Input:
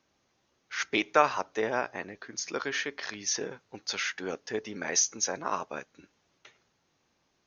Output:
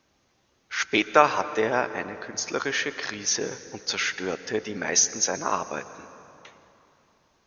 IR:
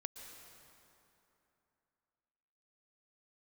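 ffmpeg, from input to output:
-filter_complex "[0:a]asplit=2[link_01][link_02];[1:a]atrim=start_sample=2205,lowshelf=frequency=120:gain=11.5[link_03];[link_02][link_03]afir=irnorm=-1:irlink=0,volume=-1.5dB[link_04];[link_01][link_04]amix=inputs=2:normalize=0,volume=1.5dB"

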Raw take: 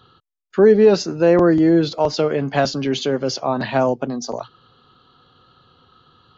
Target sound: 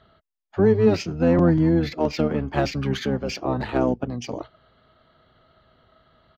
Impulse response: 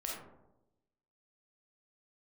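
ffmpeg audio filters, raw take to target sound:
-filter_complex "[0:a]adynamicsmooth=sensitivity=3.5:basefreq=5900,asplit=2[link_01][link_02];[link_02]asetrate=22050,aresample=44100,atempo=2,volume=0dB[link_03];[link_01][link_03]amix=inputs=2:normalize=0,aresample=32000,aresample=44100,volume=-7dB"

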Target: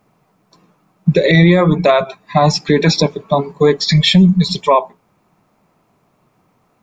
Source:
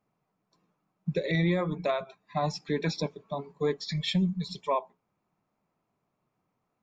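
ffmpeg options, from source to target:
ffmpeg -i in.wav -af "alimiter=level_in=21dB:limit=-1dB:release=50:level=0:latency=1,volume=-1dB" out.wav

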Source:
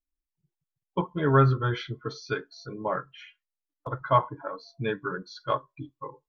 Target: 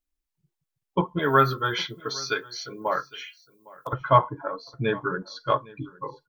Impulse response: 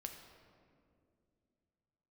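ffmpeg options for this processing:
-filter_complex "[0:a]asettb=1/sr,asplit=3[link_01][link_02][link_03];[link_01]atrim=end=1.194[link_04];[link_02]atrim=start=1.19:end=3.93,asetpts=PTS-STARTPTS,afade=type=in:duration=0.004:curve=qsin,afade=type=out:start_time=2.736:duration=0.004:curve=qsin,aemphasis=mode=production:type=riaa[link_05];[link_03]atrim=start=3.926[link_06];[link_04][link_05]acrossfade=duration=0.004:curve1=hsin:curve2=qsin[link_07];[link_07][link_06]acrossfade=duration=0.004:curve1=qsin:curve2=hsin,aecho=1:1:809:0.0794,volume=4dB"

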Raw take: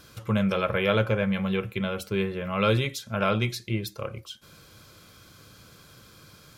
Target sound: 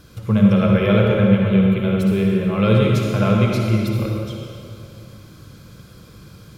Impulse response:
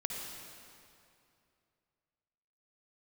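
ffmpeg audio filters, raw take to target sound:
-filter_complex "[0:a]lowshelf=frequency=430:gain=11[link_01];[1:a]atrim=start_sample=2205[link_02];[link_01][link_02]afir=irnorm=-1:irlink=0"

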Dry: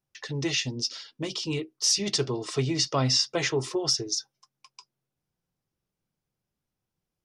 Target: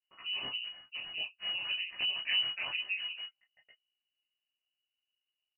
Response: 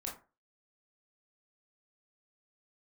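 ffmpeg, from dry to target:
-filter_complex "[0:a]lowshelf=frequency=85:gain=9.5,acrossover=split=1600[link_01][link_02];[link_02]aeval=exprs='max(val(0),0)':channel_layout=same[link_03];[link_01][link_03]amix=inputs=2:normalize=0,aeval=exprs='val(0)*sin(2*PI*96*n/s)':channel_layout=same,aeval=exprs='(mod(5.31*val(0)+1,2)-1)/5.31':channel_layout=same,atempo=1.3[link_04];[1:a]atrim=start_sample=2205,afade=type=out:start_time=0.14:duration=0.01,atrim=end_sample=6615,asetrate=79380,aresample=44100[link_05];[link_04][link_05]afir=irnorm=-1:irlink=0,lowpass=frequency=2600:width_type=q:width=0.5098,lowpass=frequency=2600:width_type=q:width=0.6013,lowpass=frequency=2600:width_type=q:width=0.9,lowpass=frequency=2600:width_type=q:width=2.563,afreqshift=-3000"

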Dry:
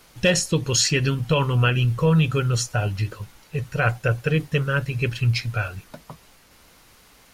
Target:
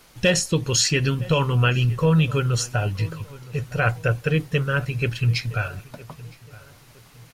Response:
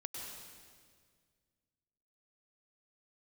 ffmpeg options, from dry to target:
-filter_complex "[0:a]asplit=2[link_01][link_02];[link_02]adelay=964,lowpass=frequency=2000:poles=1,volume=-19.5dB,asplit=2[link_03][link_04];[link_04]adelay=964,lowpass=frequency=2000:poles=1,volume=0.37,asplit=2[link_05][link_06];[link_06]adelay=964,lowpass=frequency=2000:poles=1,volume=0.37[link_07];[link_01][link_03][link_05][link_07]amix=inputs=4:normalize=0"

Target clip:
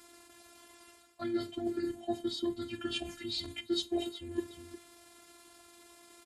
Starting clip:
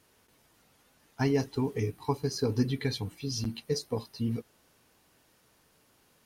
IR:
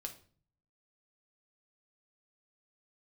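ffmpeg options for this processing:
-filter_complex "[0:a]asplit=2[link_01][link_02];[1:a]atrim=start_sample=2205,highshelf=frequency=5400:gain=3[link_03];[link_02][link_03]afir=irnorm=-1:irlink=0,volume=-0.5dB[link_04];[link_01][link_04]amix=inputs=2:normalize=0,asetrate=34006,aresample=44100,atempo=1.29684,aecho=1:1:360:0.112,areverse,acompressor=threshold=-35dB:ratio=8,areverse,afftfilt=real='hypot(re,im)*cos(PI*b)':imag='0':win_size=512:overlap=0.75,highpass=66,volume=8dB"

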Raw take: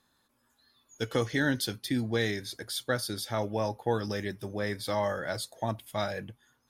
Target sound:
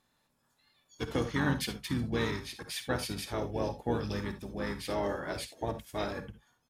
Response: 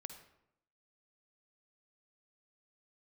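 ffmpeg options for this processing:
-filter_complex "[0:a]asplit=4[link_01][link_02][link_03][link_04];[link_02]asetrate=22050,aresample=44100,atempo=2,volume=-6dB[link_05];[link_03]asetrate=29433,aresample=44100,atempo=1.49831,volume=-6dB[link_06];[link_04]asetrate=37084,aresample=44100,atempo=1.18921,volume=-12dB[link_07];[link_01][link_05][link_06][link_07]amix=inputs=4:normalize=0[link_08];[1:a]atrim=start_sample=2205,afade=type=out:start_time=0.13:duration=0.01,atrim=end_sample=6174[link_09];[link_08][link_09]afir=irnorm=-1:irlink=0"

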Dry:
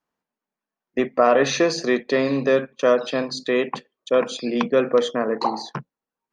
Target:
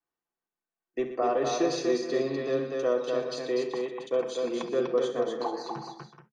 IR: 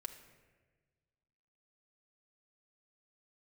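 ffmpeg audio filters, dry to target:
-filter_complex "[0:a]aecho=1:1:68|121|246|376|430:0.211|0.211|0.631|0.15|0.211,acrossover=split=180|1100|3300[link_01][link_02][link_03][link_04];[link_03]acompressor=threshold=-38dB:ratio=6[link_05];[link_01][link_02][link_05][link_04]amix=inputs=4:normalize=0[link_06];[1:a]atrim=start_sample=2205,atrim=end_sample=3087,asetrate=41013,aresample=44100[link_07];[link_06][link_07]afir=irnorm=-1:irlink=0,volume=-6dB"

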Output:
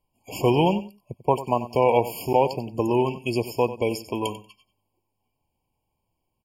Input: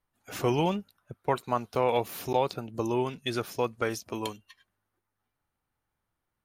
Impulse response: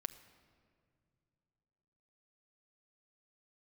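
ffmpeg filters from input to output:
-af "aecho=1:1:93|186:0.2|0.0319,afftfilt=real='re*eq(mod(floor(b*sr/1024/1100),2),0)':imag='im*eq(mod(floor(b*sr/1024/1100),2),0)':win_size=1024:overlap=0.75,volume=6.5dB"

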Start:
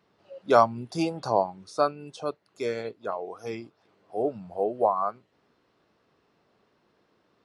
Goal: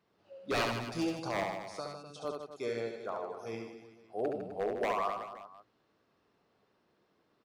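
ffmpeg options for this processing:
ffmpeg -i in.wav -filter_complex "[0:a]asettb=1/sr,asplit=3[link_01][link_02][link_03];[link_01]atrim=end=1.684[link_04];[link_02]atrim=start=1.68:end=2.25,asetpts=PTS-STARTPTS,afade=type=in:duration=0.004:curve=qsin,afade=type=out:start_time=0.566:duration=0.004:curve=qsin,acrossover=split=170|3000[link_05][link_06][link_07];[link_06]acompressor=threshold=-33dB:ratio=6[link_08];[link_05][link_08][link_07]amix=inputs=3:normalize=0[link_09];[link_03]atrim=start=2.246[link_10];[link_04][link_09]acrossfade=duration=0.004:curve1=hsin:curve2=qsin[link_11];[link_11][link_10]acrossfade=duration=0.004:curve1=qsin:curve2=hsin,aeval=exprs='0.126*(abs(mod(val(0)/0.126+3,4)-2)-1)':channel_layout=same,aecho=1:1:70|154|254.8|375.8|520.9:0.631|0.398|0.251|0.158|0.1,volume=-7.5dB" out.wav

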